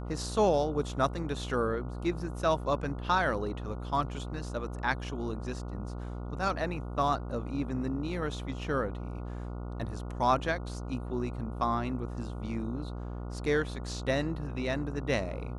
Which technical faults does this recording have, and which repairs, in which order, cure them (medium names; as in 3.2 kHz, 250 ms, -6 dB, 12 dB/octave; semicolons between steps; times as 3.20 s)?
buzz 60 Hz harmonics 24 -38 dBFS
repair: de-hum 60 Hz, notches 24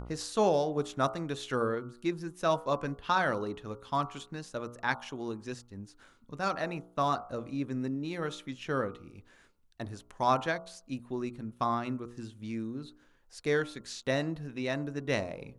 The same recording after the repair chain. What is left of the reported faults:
nothing left